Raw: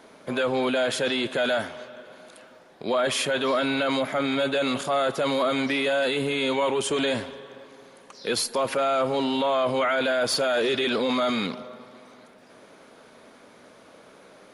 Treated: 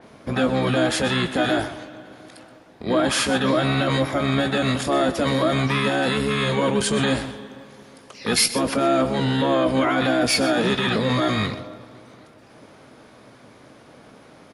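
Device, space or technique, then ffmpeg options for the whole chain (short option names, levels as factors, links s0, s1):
octave pedal: -filter_complex "[0:a]asplit=2[s0][s1];[s1]adelay=19,volume=0.282[s2];[s0][s2]amix=inputs=2:normalize=0,asplit=3[s3][s4][s5];[s3]afade=t=out:st=7.15:d=0.02[s6];[s4]highshelf=f=6000:g=4.5,afade=t=in:st=7.15:d=0.02,afade=t=out:st=8.53:d=0.02[s7];[s5]afade=t=in:st=8.53:d=0.02[s8];[s6][s7][s8]amix=inputs=3:normalize=0,asplit=2[s9][s10];[s10]asetrate=22050,aresample=44100,atempo=2,volume=1[s11];[s9][s11]amix=inputs=2:normalize=0,aecho=1:1:126:0.188,adynamicequalizer=threshold=0.0112:dfrequency=4300:dqfactor=0.7:tfrequency=4300:tqfactor=0.7:attack=5:release=100:ratio=0.375:range=2.5:mode=boostabove:tftype=highshelf"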